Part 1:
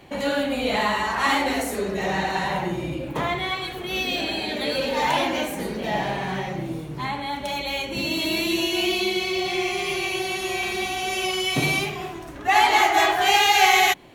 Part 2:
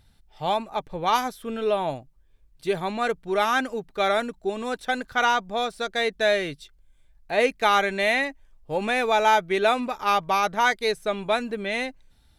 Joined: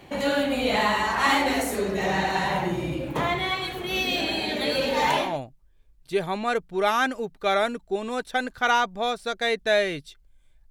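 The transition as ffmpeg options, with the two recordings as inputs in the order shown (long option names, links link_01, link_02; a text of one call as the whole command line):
ffmpeg -i cue0.wav -i cue1.wav -filter_complex "[0:a]apad=whole_dur=10.7,atrim=end=10.7,atrim=end=5.39,asetpts=PTS-STARTPTS[link_01];[1:a]atrim=start=1.63:end=7.24,asetpts=PTS-STARTPTS[link_02];[link_01][link_02]acrossfade=duration=0.3:curve1=tri:curve2=tri" out.wav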